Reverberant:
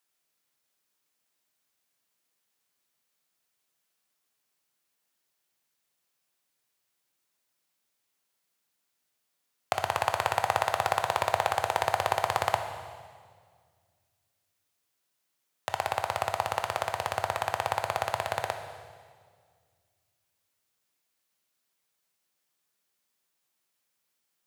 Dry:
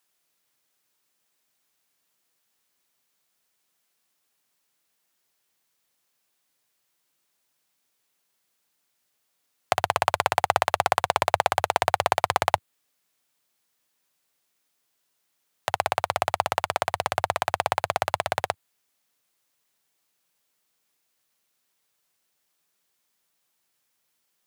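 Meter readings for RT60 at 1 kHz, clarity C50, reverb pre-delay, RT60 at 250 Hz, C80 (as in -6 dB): 1.7 s, 7.5 dB, 14 ms, 2.3 s, 8.5 dB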